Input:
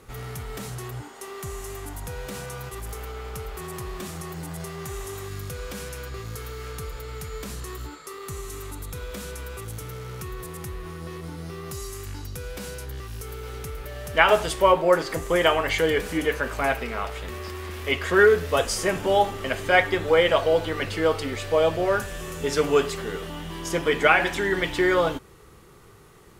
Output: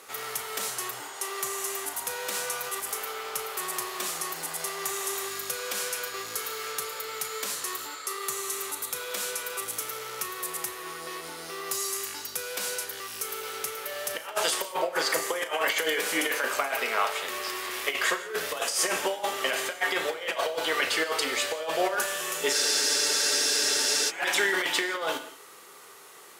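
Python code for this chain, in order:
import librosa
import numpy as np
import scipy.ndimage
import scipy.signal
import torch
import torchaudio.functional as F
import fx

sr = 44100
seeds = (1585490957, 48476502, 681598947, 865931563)

y = scipy.signal.sosfilt(scipy.signal.butter(2, 560.0, 'highpass', fs=sr, output='sos'), x)
y = fx.high_shelf(y, sr, hz=3200.0, db=6.0)
y = fx.over_compress(y, sr, threshold_db=-27.0, ratio=-0.5)
y = fx.doubler(y, sr, ms=36.0, db=-12.5)
y = fx.rev_gated(y, sr, seeds[0], gate_ms=200, shape='flat', drr_db=11.0)
y = fx.spec_freeze(y, sr, seeds[1], at_s=22.54, hold_s=1.56)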